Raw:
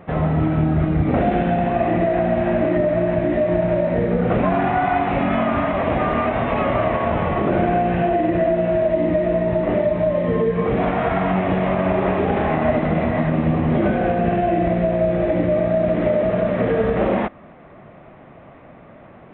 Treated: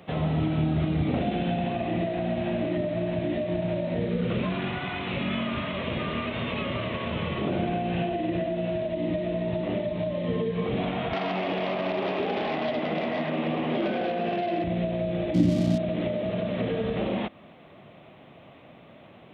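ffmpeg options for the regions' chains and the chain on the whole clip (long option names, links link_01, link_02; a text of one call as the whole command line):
ffmpeg -i in.wav -filter_complex "[0:a]asettb=1/sr,asplit=3[link_01][link_02][link_03];[link_01]atrim=end=4.094[link_04];[link_02]atrim=start=4.09:end=7.42,asetpts=PTS-STARTPTS,afade=type=in:duration=0.004:curve=qsin,afade=type=out:start_time=3.326:duration=0.004:curve=qsin,equalizer=frequency=750:width_type=o:width=0.4:gain=-13,bandreject=frequency=290:width=7[link_05];[link_03]atrim=start=7.416[link_06];[link_04][link_05]acrossfade=duration=0.004:curve1=hsin:curve2=qsin[link_07];[link_07][link_06]acrossfade=duration=0.004:curve1=qsin:curve2=hsin,asettb=1/sr,asplit=3[link_08][link_09][link_10];[link_08]atrim=end=11.134[link_11];[link_09]atrim=start=11.13:end=14.64,asetpts=PTS-STARTPTS,afade=type=in:duration=0.004:curve=qsin,afade=type=out:start_time=3.506:duration=0.004:curve=qsin,highpass=390,lowpass=3200,aeval=exprs='0.376*sin(PI/2*1.58*val(0)/0.376)':channel_layout=same[link_12];[link_10]atrim=start=14.636[link_13];[link_11][link_12]acrossfade=duration=0.004:curve1=hsin:curve2=qsin[link_14];[link_14][link_13]acrossfade=duration=0.004:curve1=qsin:curve2=hsin,asettb=1/sr,asplit=3[link_15][link_16][link_17];[link_15]atrim=end=15.344[link_18];[link_16]atrim=start=15.34:end=15.78,asetpts=PTS-STARTPTS,afade=type=in:duration=0.004:curve=qsin,afade=type=out:start_time=0.436:duration=0.004:curve=qsin,lowshelf=frequency=350:width_type=q:width=3:gain=6,adynamicsmooth=sensitivity=6.5:basefreq=510[link_19];[link_17]atrim=start=15.776[link_20];[link_18][link_19]acrossfade=duration=0.004:curve1=hsin:curve2=qsin[link_21];[link_21][link_20]acrossfade=duration=0.004:curve1=qsin:curve2=hsin,highpass=81,highshelf=frequency=2400:width_type=q:width=1.5:gain=11.5,acrossover=split=300[link_22][link_23];[link_23]acompressor=threshold=-24dB:ratio=3[link_24];[link_22][link_24]amix=inputs=2:normalize=0,volume=-6dB" out.wav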